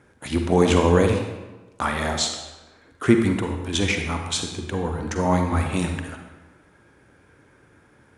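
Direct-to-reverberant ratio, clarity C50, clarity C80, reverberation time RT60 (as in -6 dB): 4.0 dB, 5.0 dB, 7.0 dB, 1.2 s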